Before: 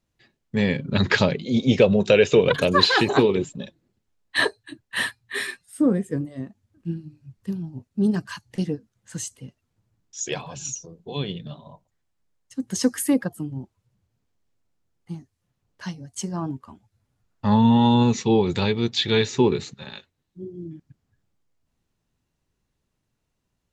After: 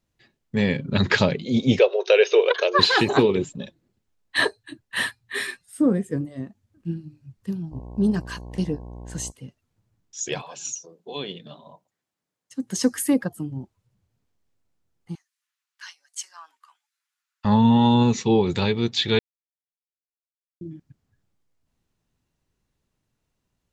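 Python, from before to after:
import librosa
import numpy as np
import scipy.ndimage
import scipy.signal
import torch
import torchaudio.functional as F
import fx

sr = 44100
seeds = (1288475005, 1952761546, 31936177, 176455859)

y = fx.brickwall_bandpass(x, sr, low_hz=350.0, high_hz=6600.0, at=(1.79, 2.79))
y = fx.dmg_buzz(y, sr, base_hz=60.0, harmonics=18, level_db=-38.0, tilt_db=-6, odd_only=False, at=(7.71, 9.3), fade=0.02)
y = fx.highpass(y, sr, hz=fx.line((10.41, 460.0), (12.77, 130.0)), slope=12, at=(10.41, 12.77), fade=0.02)
y = fx.highpass(y, sr, hz=1300.0, slope=24, at=(15.15, 17.45))
y = fx.edit(y, sr, fx.silence(start_s=19.19, length_s=1.42), tone=tone)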